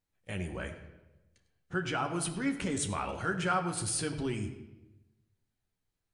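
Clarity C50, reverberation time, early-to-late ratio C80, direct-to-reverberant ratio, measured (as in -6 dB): 9.0 dB, 1.0 s, 10.5 dB, 3.5 dB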